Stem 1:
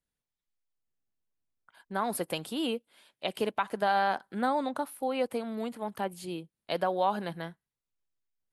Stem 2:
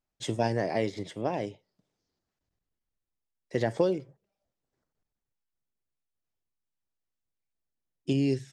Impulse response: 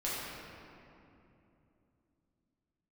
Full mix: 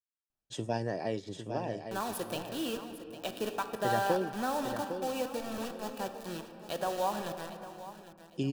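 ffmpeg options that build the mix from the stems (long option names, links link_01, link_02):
-filter_complex "[0:a]acrusher=bits=5:mix=0:aa=0.000001,volume=-7dB,asplit=3[link_01][link_02][link_03];[link_02]volume=-10.5dB[link_04];[link_03]volume=-12dB[link_05];[1:a]adelay=300,volume=-5.5dB,asplit=2[link_06][link_07];[link_07]volume=-8dB[link_08];[2:a]atrim=start_sample=2205[link_09];[link_04][link_09]afir=irnorm=-1:irlink=0[link_10];[link_05][link_08]amix=inputs=2:normalize=0,aecho=0:1:804|1608|2412|3216:1|0.29|0.0841|0.0244[link_11];[link_01][link_06][link_10][link_11]amix=inputs=4:normalize=0,asuperstop=centerf=2100:order=4:qfactor=6.7"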